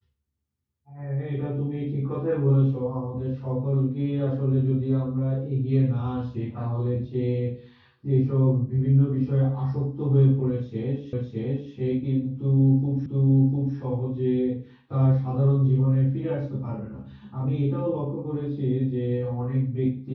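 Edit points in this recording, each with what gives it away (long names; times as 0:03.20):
0:11.13: the same again, the last 0.61 s
0:13.06: the same again, the last 0.7 s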